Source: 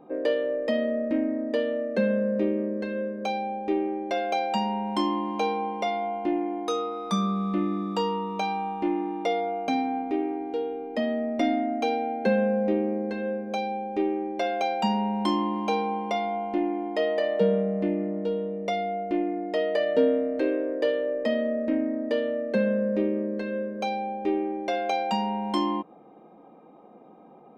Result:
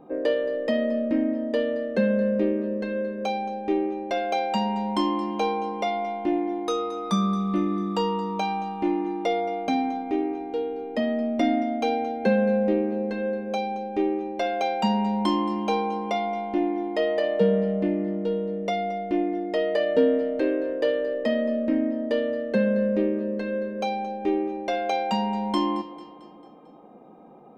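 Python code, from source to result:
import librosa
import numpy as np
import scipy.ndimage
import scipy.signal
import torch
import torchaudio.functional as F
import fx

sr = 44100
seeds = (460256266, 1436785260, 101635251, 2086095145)

y = fx.low_shelf(x, sr, hz=110.0, db=7.5)
y = fx.notch(y, sr, hz=2300.0, q=28.0)
y = fx.echo_feedback(y, sr, ms=223, feedback_pct=53, wet_db=-16)
y = F.gain(torch.from_numpy(y), 1.0).numpy()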